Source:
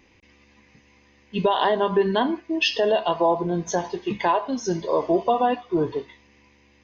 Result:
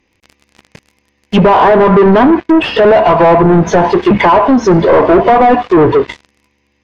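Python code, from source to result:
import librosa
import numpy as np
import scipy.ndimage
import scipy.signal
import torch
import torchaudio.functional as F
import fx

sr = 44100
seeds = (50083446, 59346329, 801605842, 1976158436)

y = fx.leveller(x, sr, passes=5)
y = fx.env_lowpass_down(y, sr, base_hz=1500.0, full_db=-12.0)
y = y * 10.0 ** (7.0 / 20.0)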